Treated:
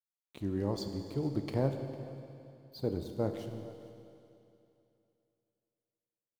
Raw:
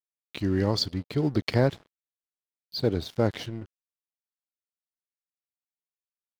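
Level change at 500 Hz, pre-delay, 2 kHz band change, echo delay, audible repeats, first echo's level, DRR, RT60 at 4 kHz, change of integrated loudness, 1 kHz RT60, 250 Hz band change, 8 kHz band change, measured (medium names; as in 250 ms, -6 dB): -7.5 dB, 15 ms, -16.0 dB, 452 ms, 1, -19.5 dB, 6.0 dB, 2.7 s, -9.0 dB, 2.7 s, -7.5 dB, under -10 dB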